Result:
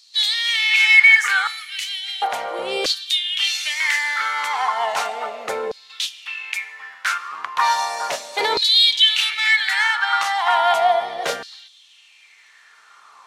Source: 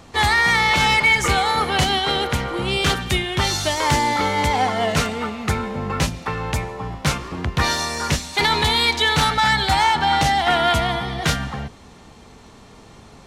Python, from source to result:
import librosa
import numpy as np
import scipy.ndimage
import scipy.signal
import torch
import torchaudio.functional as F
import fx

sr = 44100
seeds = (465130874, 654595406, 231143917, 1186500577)

y = fx.ellip_bandstop(x, sr, low_hz=120.0, high_hz=2300.0, order=3, stop_db=40, at=(1.47, 2.22))
y = fx.rev_double_slope(y, sr, seeds[0], early_s=0.42, late_s=2.5, knee_db=-28, drr_db=15.5)
y = fx.filter_lfo_highpass(y, sr, shape='saw_down', hz=0.35, low_hz=460.0, high_hz=4500.0, q=5.2)
y = y * librosa.db_to_amplitude(-4.5)